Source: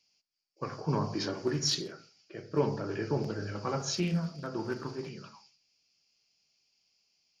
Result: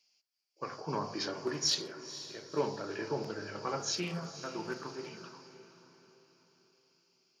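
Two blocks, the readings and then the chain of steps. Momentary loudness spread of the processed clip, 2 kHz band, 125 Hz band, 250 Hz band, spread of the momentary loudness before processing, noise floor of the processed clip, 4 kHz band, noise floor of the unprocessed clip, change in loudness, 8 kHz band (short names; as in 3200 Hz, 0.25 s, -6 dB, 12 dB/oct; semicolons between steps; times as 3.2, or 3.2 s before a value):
15 LU, 0.0 dB, -10.0 dB, -6.5 dB, 14 LU, -76 dBFS, 0.0 dB, -77 dBFS, -3.0 dB, 0.0 dB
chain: HPF 480 Hz 6 dB/oct; on a send: diffused feedback echo 0.496 s, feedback 42%, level -13 dB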